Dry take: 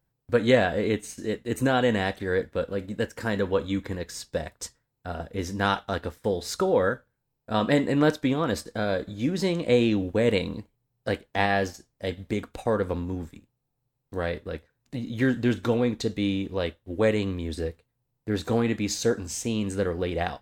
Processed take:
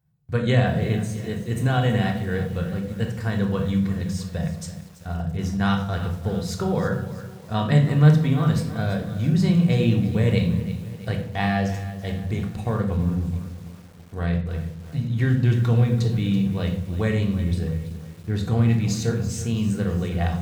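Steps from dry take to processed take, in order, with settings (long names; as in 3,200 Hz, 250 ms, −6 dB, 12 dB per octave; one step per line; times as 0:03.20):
high-pass filter 66 Hz 12 dB per octave
low shelf with overshoot 220 Hz +9 dB, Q 3
mains-hum notches 60/120/180 Hz
on a send at −2.5 dB: convolution reverb RT60 0.65 s, pre-delay 3 ms
on the sum: feedback echo at a low word length 332 ms, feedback 55%, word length 6 bits, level −14 dB
level −3 dB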